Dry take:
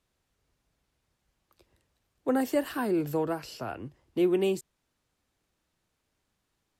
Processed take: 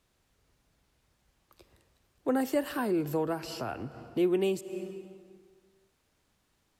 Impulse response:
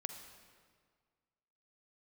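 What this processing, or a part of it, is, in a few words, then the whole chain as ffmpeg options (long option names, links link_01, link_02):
ducked reverb: -filter_complex "[0:a]asplit=3[link_01][link_02][link_03];[1:a]atrim=start_sample=2205[link_04];[link_02][link_04]afir=irnorm=-1:irlink=0[link_05];[link_03]apad=whole_len=299443[link_06];[link_05][link_06]sidechaincompress=threshold=-45dB:ratio=6:attack=37:release=185,volume=6dB[link_07];[link_01][link_07]amix=inputs=2:normalize=0,volume=-3dB"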